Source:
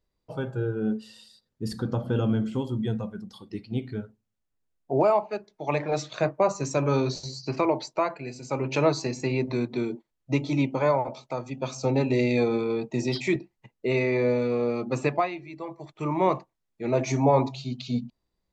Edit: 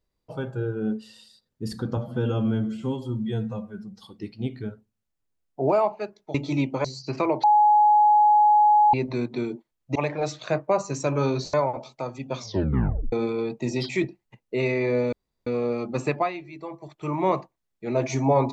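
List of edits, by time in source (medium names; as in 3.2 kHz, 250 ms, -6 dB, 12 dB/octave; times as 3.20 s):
1.97–3.34 s: stretch 1.5×
5.66–7.24 s: swap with 10.35–10.85 s
7.83–9.33 s: bleep 840 Hz -13.5 dBFS
11.68 s: tape stop 0.76 s
14.44 s: insert room tone 0.34 s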